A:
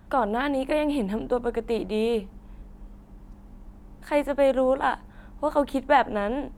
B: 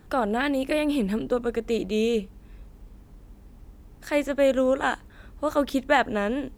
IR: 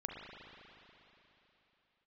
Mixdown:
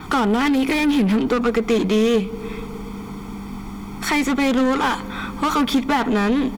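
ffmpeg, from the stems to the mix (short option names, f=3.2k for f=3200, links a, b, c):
-filter_complex "[0:a]lowshelf=f=480:t=q:w=1.5:g=7,aecho=1:1:4.4:0.78,volume=-2.5dB,asplit=2[a][b];[b]volume=-11.5dB[c];[1:a]aecho=1:1:0.9:0.97,asplit=2[d][e];[e]highpass=f=720:p=1,volume=34dB,asoftclip=type=tanh:threshold=-6dB[f];[d][f]amix=inputs=2:normalize=0,lowpass=f=3.7k:p=1,volume=-6dB,volume=-4dB[g];[2:a]atrim=start_sample=2205[h];[c][h]afir=irnorm=-1:irlink=0[i];[a][g][i]amix=inputs=3:normalize=0,adynamicequalizer=threshold=0.00282:dfrequency=8300:dqfactor=3.9:tfrequency=8300:tqfactor=3.9:attack=5:release=100:ratio=0.375:range=2.5:mode=cutabove:tftype=bell,acompressor=threshold=-19dB:ratio=2"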